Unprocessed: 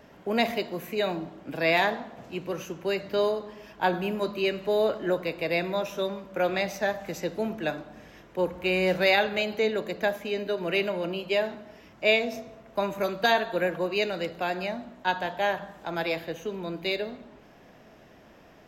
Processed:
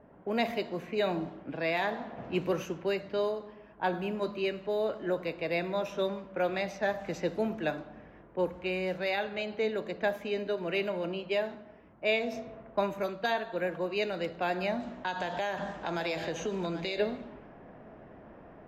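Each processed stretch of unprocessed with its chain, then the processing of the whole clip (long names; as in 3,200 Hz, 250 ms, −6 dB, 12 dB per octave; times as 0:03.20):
0:14.80–0:16.98: parametric band 6,800 Hz +10 dB 1.2 octaves + downward compressor 4 to 1, threshold −36 dBFS + single-tap delay 784 ms −11.5 dB
whole clip: high-shelf EQ 3,800 Hz −6 dB; speech leveller 0.5 s; low-pass that shuts in the quiet parts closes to 1,100 Hz, open at −24 dBFS; level −4 dB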